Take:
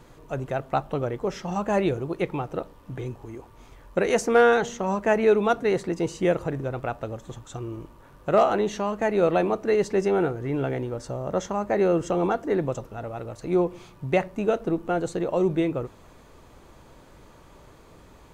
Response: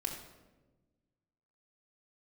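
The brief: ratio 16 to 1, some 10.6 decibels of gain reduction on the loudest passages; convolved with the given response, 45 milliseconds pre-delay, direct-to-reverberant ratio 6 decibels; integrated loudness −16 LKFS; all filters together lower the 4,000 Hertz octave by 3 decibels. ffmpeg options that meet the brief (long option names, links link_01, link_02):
-filter_complex "[0:a]equalizer=frequency=4000:width_type=o:gain=-4,acompressor=threshold=-24dB:ratio=16,asplit=2[link_01][link_02];[1:a]atrim=start_sample=2205,adelay=45[link_03];[link_02][link_03]afir=irnorm=-1:irlink=0,volume=-7.5dB[link_04];[link_01][link_04]amix=inputs=2:normalize=0,volume=13.5dB"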